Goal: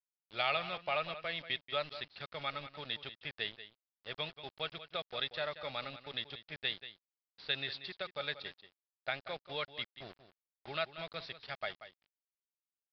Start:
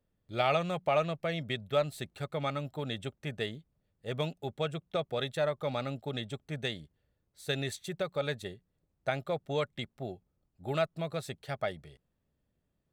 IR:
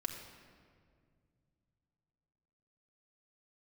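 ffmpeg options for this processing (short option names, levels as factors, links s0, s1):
-filter_complex "[0:a]highpass=f=74:w=0.5412,highpass=f=74:w=1.3066,tiltshelf=f=860:g=-9.5,acrusher=bits=6:mix=0:aa=0.000001,asplit=2[s0][s1];[s1]aecho=0:1:185:0.224[s2];[s0][s2]amix=inputs=2:normalize=0,aresample=11025,aresample=44100,volume=0.473"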